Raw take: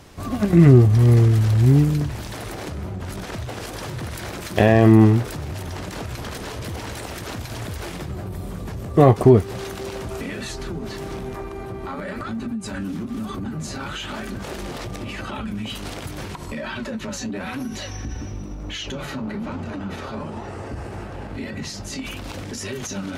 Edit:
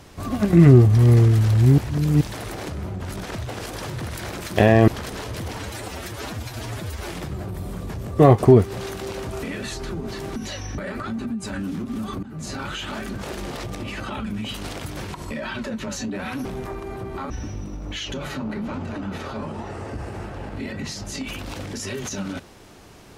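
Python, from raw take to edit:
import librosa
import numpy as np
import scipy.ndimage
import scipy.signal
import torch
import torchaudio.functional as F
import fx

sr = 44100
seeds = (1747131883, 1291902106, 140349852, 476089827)

y = fx.edit(x, sr, fx.reverse_span(start_s=1.78, length_s=0.43),
    fx.cut(start_s=4.88, length_s=1.28),
    fx.stretch_span(start_s=6.85, length_s=1.0, factor=1.5),
    fx.swap(start_s=11.14, length_s=0.85, other_s=17.66, other_length_s=0.42),
    fx.fade_in_from(start_s=13.44, length_s=0.27, floor_db=-15.5), tone=tone)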